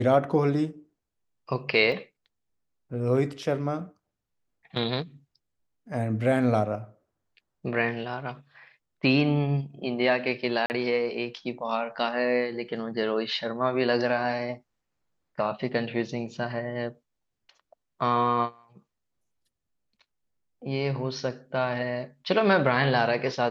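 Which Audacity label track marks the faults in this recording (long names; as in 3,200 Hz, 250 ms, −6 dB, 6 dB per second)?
1.920000	1.920000	drop-out 2.5 ms
10.660000	10.700000	drop-out 39 ms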